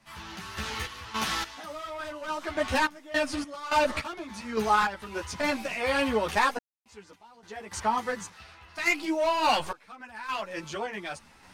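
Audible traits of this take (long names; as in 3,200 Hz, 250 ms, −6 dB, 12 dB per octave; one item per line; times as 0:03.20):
sample-and-hold tremolo, depth 100%
a shimmering, thickened sound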